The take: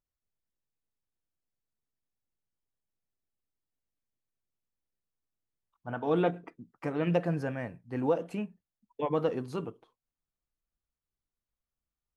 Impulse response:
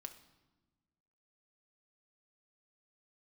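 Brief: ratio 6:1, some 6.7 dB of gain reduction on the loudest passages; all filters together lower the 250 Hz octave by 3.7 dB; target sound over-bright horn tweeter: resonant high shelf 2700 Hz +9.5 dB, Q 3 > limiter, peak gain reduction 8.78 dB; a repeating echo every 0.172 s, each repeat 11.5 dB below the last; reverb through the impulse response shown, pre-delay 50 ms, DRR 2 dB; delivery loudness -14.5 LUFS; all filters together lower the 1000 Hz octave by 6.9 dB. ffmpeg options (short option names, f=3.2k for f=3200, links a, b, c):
-filter_complex "[0:a]equalizer=f=250:t=o:g=-5,equalizer=f=1k:t=o:g=-8,acompressor=threshold=-32dB:ratio=6,aecho=1:1:172|344|516:0.266|0.0718|0.0194,asplit=2[a][b];[1:a]atrim=start_sample=2205,adelay=50[c];[b][c]afir=irnorm=-1:irlink=0,volume=3dB[d];[a][d]amix=inputs=2:normalize=0,highshelf=f=2.7k:t=q:w=3:g=9.5,volume=26.5dB,alimiter=limit=-4dB:level=0:latency=1"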